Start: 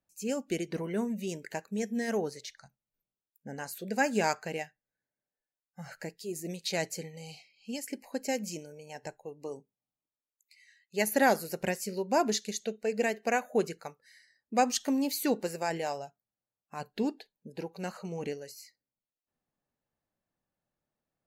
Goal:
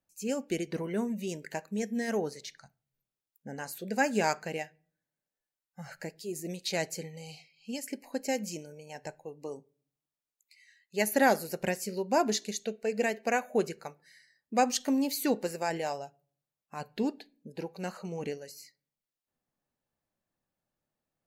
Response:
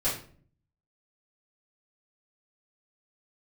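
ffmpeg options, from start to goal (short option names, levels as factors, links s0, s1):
-filter_complex "[0:a]asplit=2[s0][s1];[1:a]atrim=start_sample=2205,lowpass=4500[s2];[s1][s2]afir=irnorm=-1:irlink=0,volume=0.0355[s3];[s0][s3]amix=inputs=2:normalize=0"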